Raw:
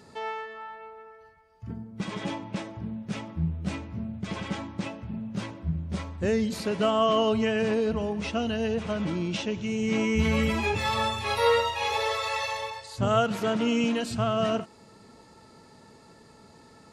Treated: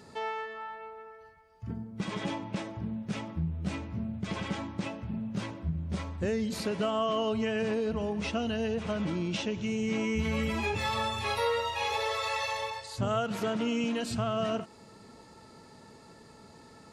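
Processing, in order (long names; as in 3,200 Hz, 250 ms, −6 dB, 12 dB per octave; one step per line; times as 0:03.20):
downward compressor 2.5 to 1, threshold −29 dBFS, peak gain reduction 8 dB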